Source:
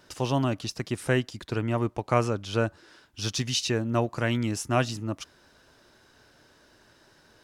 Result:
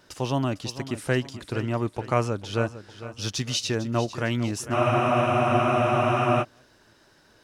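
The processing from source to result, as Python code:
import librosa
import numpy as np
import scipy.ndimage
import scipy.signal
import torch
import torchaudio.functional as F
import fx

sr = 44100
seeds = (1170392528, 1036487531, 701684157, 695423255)

y = fx.echo_feedback(x, sr, ms=452, feedback_pct=41, wet_db=-13.5)
y = fx.spec_freeze(y, sr, seeds[0], at_s=4.76, hold_s=1.65)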